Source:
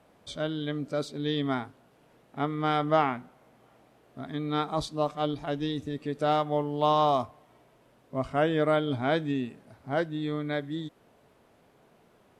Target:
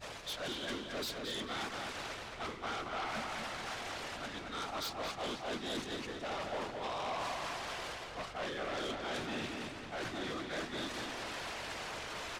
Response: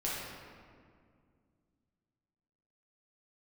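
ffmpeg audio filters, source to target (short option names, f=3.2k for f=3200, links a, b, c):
-filter_complex "[0:a]aeval=exprs='val(0)+0.5*0.0224*sgn(val(0))':c=same,highpass=f=1.4k:p=1,agate=range=-33dB:threshold=-34dB:ratio=3:detection=peak,lowpass=6k,areverse,acompressor=threshold=-47dB:ratio=5,areverse,aeval=exprs='val(0)+0.000355*(sin(2*PI*50*n/s)+sin(2*PI*2*50*n/s)/2+sin(2*PI*3*50*n/s)/3+sin(2*PI*4*50*n/s)/4+sin(2*PI*5*50*n/s)/5)':c=same,afftfilt=real='hypot(re,im)*cos(2*PI*random(0))':imag='hypot(re,im)*sin(2*PI*random(1))':win_size=512:overlap=0.75,aeval=exprs='0.00841*sin(PI/2*2.82*val(0)/0.00841)':c=same,asplit=2[a][b];[b]adelay=223,lowpass=f=4k:p=1,volume=-4dB,asplit=2[c][d];[d]adelay=223,lowpass=f=4k:p=1,volume=0.49,asplit=2[e][f];[f]adelay=223,lowpass=f=4k:p=1,volume=0.49,asplit=2[g][h];[h]adelay=223,lowpass=f=4k:p=1,volume=0.49,asplit=2[i][j];[j]adelay=223,lowpass=f=4k:p=1,volume=0.49,asplit=2[k][l];[l]adelay=223,lowpass=f=4k:p=1,volume=0.49[m];[c][e][g][i][k][m]amix=inputs=6:normalize=0[n];[a][n]amix=inputs=2:normalize=0,volume=5.5dB"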